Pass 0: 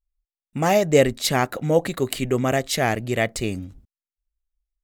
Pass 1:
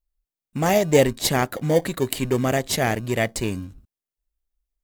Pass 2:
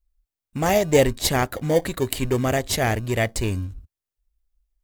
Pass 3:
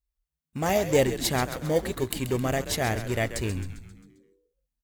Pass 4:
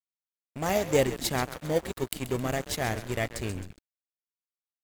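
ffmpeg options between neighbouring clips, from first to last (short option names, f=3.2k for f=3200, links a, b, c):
-filter_complex "[0:a]highshelf=f=8.8k:g=6.5,asplit=2[a][b];[b]acrusher=samples=33:mix=1:aa=0.000001,volume=-11dB[c];[a][c]amix=inputs=2:normalize=0,volume=-1.5dB"
-af "lowshelf=f=110:t=q:w=1.5:g=8"
-filter_complex "[0:a]highpass=49,asplit=2[a][b];[b]asplit=6[c][d][e][f][g][h];[c]adelay=133,afreqshift=-97,volume=-11dB[i];[d]adelay=266,afreqshift=-194,volume=-16.7dB[j];[e]adelay=399,afreqshift=-291,volume=-22.4dB[k];[f]adelay=532,afreqshift=-388,volume=-28dB[l];[g]adelay=665,afreqshift=-485,volume=-33.7dB[m];[h]adelay=798,afreqshift=-582,volume=-39.4dB[n];[i][j][k][l][m][n]amix=inputs=6:normalize=0[o];[a][o]amix=inputs=2:normalize=0,volume=-5dB"
-af "aeval=exprs='sgn(val(0))*max(abs(val(0))-0.0158,0)':c=same,volume=-1dB"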